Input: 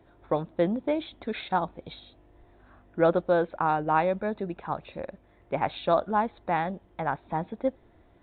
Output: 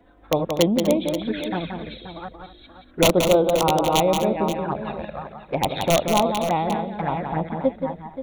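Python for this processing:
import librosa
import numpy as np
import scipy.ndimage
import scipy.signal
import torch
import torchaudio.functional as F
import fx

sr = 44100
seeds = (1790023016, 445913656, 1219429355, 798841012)

y = fx.reverse_delay(x, sr, ms=381, wet_db=-8)
y = fx.peak_eq(y, sr, hz=890.0, db=-8.5, octaves=0.9, at=(1.31, 3.01))
y = (np.mod(10.0 ** (13.5 / 20.0) * y + 1.0, 2.0) - 1.0) / 10.0 ** (13.5 / 20.0)
y = fx.env_flanger(y, sr, rest_ms=4.2, full_db=-24.5)
y = fx.echo_multitap(y, sr, ms=(177, 244, 529), db=(-6.0, -15.5, -12.0))
y = y * librosa.db_to_amplitude(7.0)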